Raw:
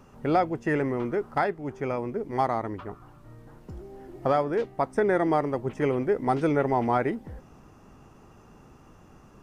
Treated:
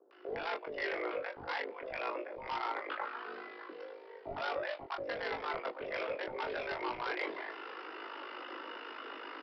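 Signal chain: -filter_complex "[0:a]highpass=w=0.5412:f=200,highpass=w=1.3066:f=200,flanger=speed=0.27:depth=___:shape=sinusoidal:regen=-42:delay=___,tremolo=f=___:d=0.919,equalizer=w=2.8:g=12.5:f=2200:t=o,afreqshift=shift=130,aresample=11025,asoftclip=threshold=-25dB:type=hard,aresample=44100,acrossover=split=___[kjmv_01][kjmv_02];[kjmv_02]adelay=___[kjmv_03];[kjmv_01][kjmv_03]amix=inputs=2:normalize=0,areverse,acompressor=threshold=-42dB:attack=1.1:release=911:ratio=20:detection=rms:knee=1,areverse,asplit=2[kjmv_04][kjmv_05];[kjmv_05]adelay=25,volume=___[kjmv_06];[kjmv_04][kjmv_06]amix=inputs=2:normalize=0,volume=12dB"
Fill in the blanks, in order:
2.8, 3.1, 52, 630, 110, -5.5dB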